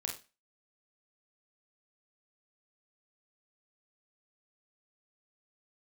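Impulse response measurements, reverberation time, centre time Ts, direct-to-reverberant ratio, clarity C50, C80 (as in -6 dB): 0.30 s, 25 ms, 0.5 dB, 7.0 dB, 14.0 dB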